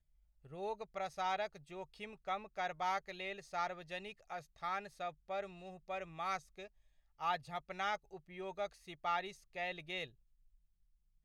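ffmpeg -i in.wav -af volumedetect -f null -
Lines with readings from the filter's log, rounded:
mean_volume: -43.3 dB
max_volume: -24.7 dB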